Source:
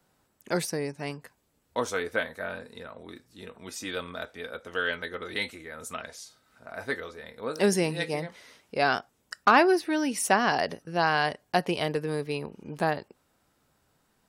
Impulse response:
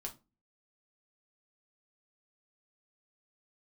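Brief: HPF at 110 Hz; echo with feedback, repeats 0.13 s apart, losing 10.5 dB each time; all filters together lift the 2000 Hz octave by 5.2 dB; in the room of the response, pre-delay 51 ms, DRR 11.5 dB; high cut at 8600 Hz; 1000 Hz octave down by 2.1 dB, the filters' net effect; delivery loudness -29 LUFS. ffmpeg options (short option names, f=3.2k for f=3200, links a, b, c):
-filter_complex "[0:a]highpass=110,lowpass=8.6k,equalizer=f=1k:t=o:g=-5.5,equalizer=f=2k:t=o:g=9,aecho=1:1:130|260|390:0.299|0.0896|0.0269,asplit=2[a][b];[1:a]atrim=start_sample=2205,adelay=51[c];[b][c]afir=irnorm=-1:irlink=0,volume=-9dB[d];[a][d]amix=inputs=2:normalize=0,volume=-2.5dB"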